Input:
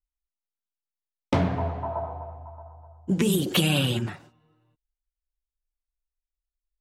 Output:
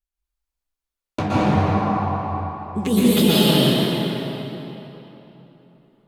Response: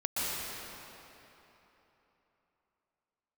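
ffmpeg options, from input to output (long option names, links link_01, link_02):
-filter_complex "[0:a]acontrast=75,asetrate=49392,aresample=44100,flanger=delay=4.9:depth=9.5:regen=57:speed=1.1:shape=sinusoidal[link_01];[1:a]atrim=start_sample=2205[link_02];[link_01][link_02]afir=irnorm=-1:irlink=0,volume=-2.5dB"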